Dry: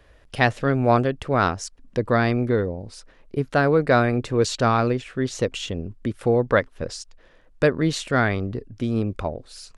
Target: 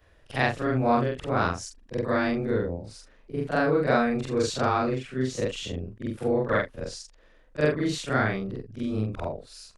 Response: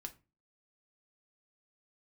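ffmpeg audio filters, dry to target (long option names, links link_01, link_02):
-af "afftfilt=real='re':imag='-im':win_size=4096:overlap=0.75"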